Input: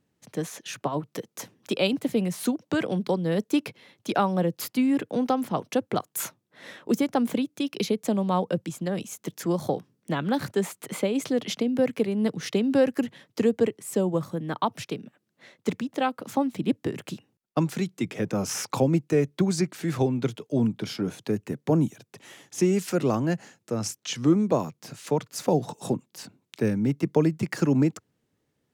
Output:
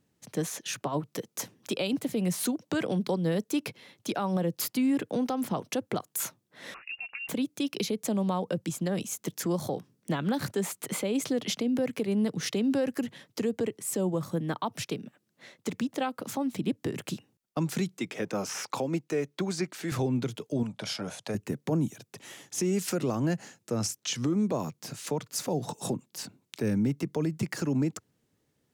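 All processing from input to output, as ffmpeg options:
-filter_complex "[0:a]asettb=1/sr,asplit=3[a][b][c];[a]atrim=end=6.744[d];[b]atrim=start=6.74:end=7.29,asetpts=PTS-STARTPTS,afade=t=in:d=0.004:c=qsin,afade=t=out:st=0.546:d=0.004:c=qsin,acompressor=threshold=-37dB:ratio=6:attack=3.2:release=140:knee=1:detection=peak,lowpass=f=2.6k:t=q:w=0.5098,lowpass=f=2.6k:t=q:w=0.6013,lowpass=f=2.6k:t=q:w=0.9,lowpass=f=2.6k:t=q:w=2.563,afreqshift=-3000[e];[c]atrim=start=7.286[f];[d][e]acrossfade=d=0.004:c1=hsin:c2=qsin[g];[g][f]acrossfade=d=0.004:c1=qsin:c2=hsin,asettb=1/sr,asplit=3[h][i][j];[h]atrim=end=17.984[k];[i]atrim=start=17.98:end=19.92,asetpts=PTS-STARTPTS,afade=t=in:d=0.004:c=qsin,afade=t=out:st=1.936:d=0.004:c=qsin,acrossover=split=3700[l][m];[m]acompressor=threshold=-36dB:ratio=4:attack=1:release=60[n];[l][n]amix=inputs=2:normalize=0,highpass=f=460:p=1,equalizer=f=13k:t=o:w=1.6:g=-5.5[o];[j]atrim=start=19.916[p];[k][o]acrossfade=d=0.004:c1=hsin:c2=qsin[q];[q][p]acrossfade=d=0.004:c1=qsin:c2=hsin,asettb=1/sr,asplit=3[r][s][t];[r]atrim=end=20.634[u];[s]atrim=start=20.63:end=21.35,asetpts=PTS-STARTPTS,afade=t=in:d=0.004:c=qsin,afade=t=out:st=0.716:d=0.004:c=qsin,lowpass=f=11k:w=0.5412,lowpass=f=11k:w=1.3066,lowshelf=f=470:t=q:w=3:g=-7.5[v];[t]atrim=start=21.346[w];[u][v]acrossfade=d=0.004:c1=hsin:c2=qsin[x];[x][w]acrossfade=d=0.004:c1=qsin:c2=hsin,bass=f=250:g=1,treble=f=4k:g=4,alimiter=limit=-20dB:level=0:latency=1:release=114"

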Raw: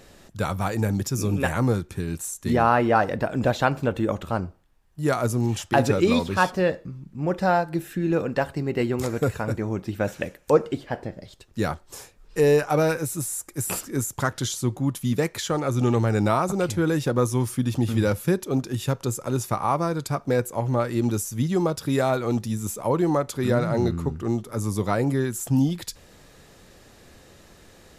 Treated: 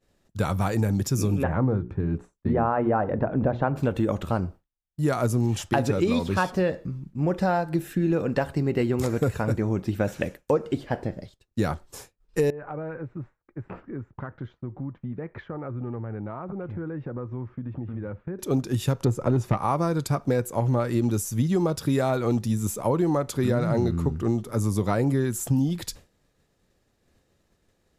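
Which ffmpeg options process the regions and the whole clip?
-filter_complex "[0:a]asettb=1/sr,asplit=3[a][b][c];[a]atrim=end=1.434[d];[b]atrim=start=1.43:end=3.76,asetpts=PTS-STARTPTS,afade=t=in:d=0.004:c=qsin,afade=t=out:st=2.326:d=0.004:c=qsin,lowpass=1.3k,bandreject=f=60:t=h:w=6,bandreject=f=120:t=h:w=6,bandreject=f=180:t=h:w=6,bandreject=f=240:t=h:w=6,bandreject=f=300:t=h:w=6,bandreject=f=360:t=h:w=6,bandreject=f=420:t=h:w=6[e];[c]atrim=start=3.756[f];[d][e]acrossfade=d=0.004:c1=hsin:c2=qsin[g];[g][f]acrossfade=d=0.004:c1=qsin:c2=hsin,asettb=1/sr,asplit=3[h][i][j];[h]atrim=end=12.504[k];[i]atrim=start=12.5:end=18.39,asetpts=PTS-STARTPTS,afade=t=in:d=0.004:c=qsin,afade=t=out:st=5.886:d=0.004:c=qsin,lowpass=f=1.9k:w=0.5412,lowpass=f=1.9k:w=1.3066,acompressor=threshold=-34dB:ratio=6:attack=3.2:release=140:knee=1:detection=peak[l];[j]atrim=start=18.386[m];[k][l]acrossfade=d=0.004:c1=hsin:c2=qsin[n];[n][m]acrossfade=d=0.004:c1=qsin:c2=hsin,asettb=1/sr,asplit=3[o][p][q];[o]atrim=end=19.044[r];[p]atrim=start=19.04:end=19.57,asetpts=PTS-STARTPTS,afade=t=in:d=0.004:c=qsin,afade=t=out:st=0.526:d=0.004:c=qsin,lowpass=f=1.2k:p=1,aeval=exprs='0.266*sin(PI/2*1.58*val(0)/0.266)':c=same[s];[q]atrim=start=19.566[t];[r][s]acrossfade=d=0.004:c1=hsin:c2=qsin[u];[u][t]acrossfade=d=0.004:c1=qsin:c2=hsin,agate=range=-33dB:threshold=-37dB:ratio=3:detection=peak,lowshelf=f=480:g=4.5,acompressor=threshold=-19dB:ratio=6"

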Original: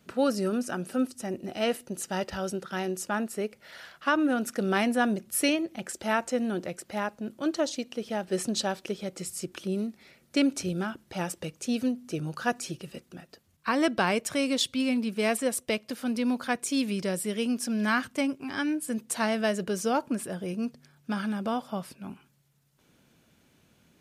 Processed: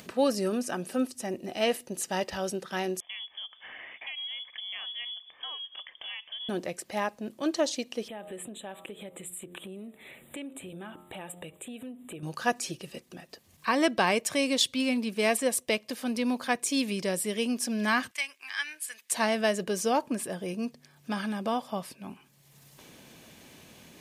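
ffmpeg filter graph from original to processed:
-filter_complex "[0:a]asettb=1/sr,asplit=3[a][b][c];[a]atrim=end=3.004[d];[b]atrim=start=3:end=6.49,asetpts=PTS-STARTPTS,afade=t=in:d=0.004:c=qsin,afade=t=out:st=3.486:d=0.004:c=qsin,acompressor=threshold=-46dB:ratio=2.5:attack=3.2:release=140:knee=1:detection=peak,lowpass=f=3.1k:t=q:w=0.5098,lowpass=f=3.1k:t=q:w=0.6013,lowpass=f=3.1k:t=q:w=0.9,lowpass=f=3.1k:t=q:w=2.563,afreqshift=-3600[e];[c]atrim=start=6.486[f];[d][e]acrossfade=d=0.004:c1=hsin:c2=qsin[g];[g][f]acrossfade=d=0.004:c1=qsin:c2=hsin,asettb=1/sr,asplit=3[h][i][j];[h]atrim=end=8.084[k];[i]atrim=start=8.08:end=12.23,asetpts=PTS-STARTPTS,afade=t=in:d=0.004:c=qsin,afade=t=out:st=4.146:d=0.004:c=qsin,bandreject=f=88.5:t=h:w=4,bandreject=f=177:t=h:w=4,bandreject=f=265.5:t=h:w=4,bandreject=f=354:t=h:w=4,bandreject=f=442.5:t=h:w=4,bandreject=f=531:t=h:w=4,bandreject=f=619.5:t=h:w=4,bandreject=f=708:t=h:w=4,bandreject=f=796.5:t=h:w=4,bandreject=f=885:t=h:w=4,bandreject=f=973.5:t=h:w=4,bandreject=f=1.062k:t=h:w=4,bandreject=f=1.1505k:t=h:w=4,bandreject=f=1.239k:t=h:w=4,bandreject=f=1.3275k:t=h:w=4,bandreject=f=1.416k:t=h:w=4,acompressor=threshold=-39dB:ratio=4:attack=3.2:release=140:knee=1:detection=peak,asuperstop=centerf=5300:order=12:qfactor=1.5[l];[j]atrim=start=12.226[m];[k][l]acrossfade=d=0.004:c1=hsin:c2=qsin[n];[n][m]acrossfade=d=0.004:c1=qsin:c2=hsin,asettb=1/sr,asplit=3[o][p][q];[o]atrim=end=18.114[r];[p]atrim=start=18.11:end=19.12,asetpts=PTS-STARTPTS,afade=t=in:d=0.004:c=qsin,afade=t=out:st=1.006:d=0.004:c=qsin,highpass=f=1.8k:t=q:w=1.5,tremolo=f=150:d=0.261[s];[q]atrim=start=19.116[t];[r][s]acrossfade=d=0.004:c1=hsin:c2=qsin[u];[u][t]acrossfade=d=0.004:c1=qsin:c2=hsin,acompressor=mode=upward:threshold=-40dB:ratio=2.5,lowshelf=f=260:g=-8,bandreject=f=1.4k:w=5.6,volume=2.5dB"

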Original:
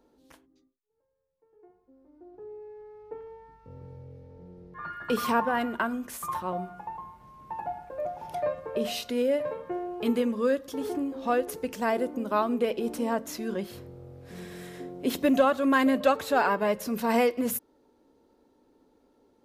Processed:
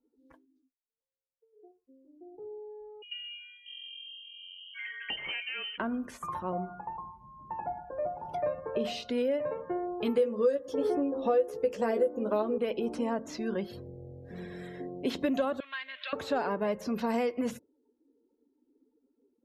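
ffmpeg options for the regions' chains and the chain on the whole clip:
-filter_complex "[0:a]asettb=1/sr,asplit=3[a][b][c];[a]atrim=end=3.024[d];[b]atrim=start=3.02:end=5.78,asetpts=PTS-STARTPTS,afade=t=in:d=0.004:c=qsin,afade=t=out:st=2.756:d=0.004:c=qsin,asplit=2[e][f];[f]adelay=20,volume=-13dB[g];[e][g]amix=inputs=2:normalize=0,atrim=end_sample=121716,lowpass=f=2.8k:t=q:w=0.5098,lowpass=f=2.8k:t=q:w=0.6013,lowpass=f=2.8k:t=q:w=0.9,lowpass=f=2.8k:t=q:w=2.563,afreqshift=-3300[h];[c]atrim=start=5.776[i];[d][h]acrossfade=d=0.004:c1=hsin:c2=qsin[j];[j][i]acrossfade=d=0.004:c1=qsin:c2=hsin,asettb=1/sr,asplit=3[k][l][m];[k]atrim=end=10.164[n];[l]atrim=start=10.16:end=12.58,asetpts=PTS-STARTPTS,afade=t=in:d=0.004:c=qsin,afade=t=out:st=2.416:d=0.004:c=qsin,equalizer=f=510:w=3:g=13,asplit=2[o][p];[p]adelay=14,volume=-4dB[q];[o][q]amix=inputs=2:normalize=0,atrim=end_sample=106722[r];[m]atrim=start=12.576[s];[n][r]acrossfade=d=0.004:c1=hsin:c2=qsin[t];[t][s]acrossfade=d=0.004:c1=qsin:c2=hsin,asettb=1/sr,asplit=3[u][v][w];[u]atrim=end=15.604[x];[v]atrim=start=15.6:end=16.13,asetpts=PTS-STARTPTS,afade=t=in:d=0.004:c=qsin,afade=t=out:st=0.526:d=0.004:c=qsin,aeval=exprs='val(0)+0.5*0.0224*sgn(val(0))':c=same,asuperpass=centerf=2700:order=4:qfactor=1.2[y];[w]atrim=start=16.126[z];[x][y]acrossfade=d=0.004:c1=hsin:c2=qsin[aa];[aa][z]acrossfade=d=0.004:c1=qsin:c2=hsin,acrossover=split=7200[ab][ac];[ac]acompressor=threshold=-51dB:ratio=4:attack=1:release=60[ad];[ab][ad]amix=inputs=2:normalize=0,afftdn=nr=24:nf=-51,acrossover=split=660|6300[ae][af][ag];[ae]acompressor=threshold=-28dB:ratio=4[ah];[af]acompressor=threshold=-37dB:ratio=4[ai];[ag]acompressor=threshold=-57dB:ratio=4[aj];[ah][ai][aj]amix=inputs=3:normalize=0"

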